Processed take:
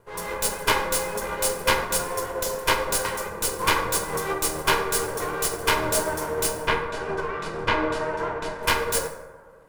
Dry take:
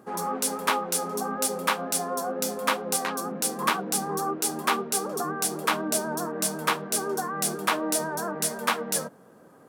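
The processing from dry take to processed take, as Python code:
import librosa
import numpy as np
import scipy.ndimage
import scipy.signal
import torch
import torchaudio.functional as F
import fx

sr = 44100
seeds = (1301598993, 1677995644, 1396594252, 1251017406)

y = fx.lower_of_two(x, sr, delay_ms=2.0)
y = fx.lowpass(y, sr, hz=3000.0, slope=12, at=(6.5, 8.63))
y = fx.rev_plate(y, sr, seeds[0], rt60_s=1.8, hf_ratio=0.35, predelay_ms=0, drr_db=0.5)
y = fx.upward_expand(y, sr, threshold_db=-39.0, expansion=1.5)
y = F.gain(torch.from_numpy(y), 4.5).numpy()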